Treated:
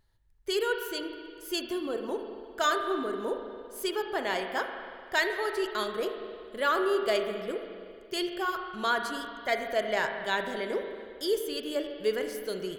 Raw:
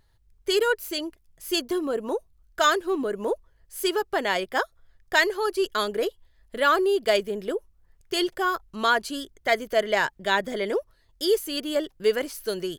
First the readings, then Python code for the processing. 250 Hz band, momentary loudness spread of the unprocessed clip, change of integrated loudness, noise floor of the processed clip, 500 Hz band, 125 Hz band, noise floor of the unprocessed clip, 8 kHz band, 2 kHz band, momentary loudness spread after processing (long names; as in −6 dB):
−5.0 dB, 10 LU, −5.5 dB, −49 dBFS, −5.0 dB, can't be measured, −63 dBFS, −6.5 dB, −5.5 dB, 10 LU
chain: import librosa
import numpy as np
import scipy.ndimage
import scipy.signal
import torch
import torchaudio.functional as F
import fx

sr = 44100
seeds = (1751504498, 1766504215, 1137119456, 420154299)

y = fx.rev_spring(x, sr, rt60_s=2.2, pass_ms=(37, 47), chirp_ms=35, drr_db=5.0)
y = y * librosa.db_to_amplitude(-6.5)